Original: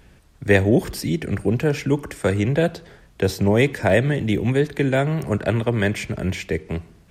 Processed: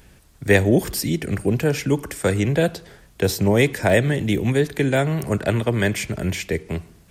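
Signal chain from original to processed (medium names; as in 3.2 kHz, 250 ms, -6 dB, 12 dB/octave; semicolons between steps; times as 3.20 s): treble shelf 6.2 kHz +10.5 dB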